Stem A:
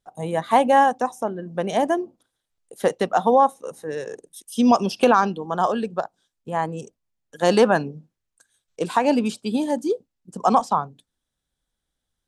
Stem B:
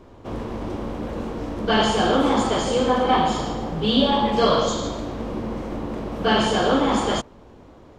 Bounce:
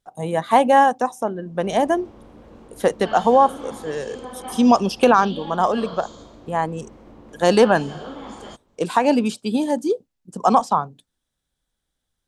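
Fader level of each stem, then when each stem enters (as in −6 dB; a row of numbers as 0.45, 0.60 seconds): +2.0, −16.0 decibels; 0.00, 1.35 seconds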